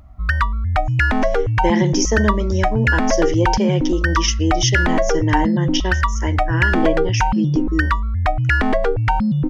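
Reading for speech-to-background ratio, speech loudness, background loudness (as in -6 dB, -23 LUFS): -3.5 dB, -22.5 LUFS, -19.0 LUFS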